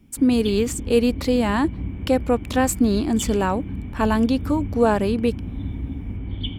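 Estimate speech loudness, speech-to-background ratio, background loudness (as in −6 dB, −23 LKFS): −21.5 LKFS, 10.0 dB, −31.5 LKFS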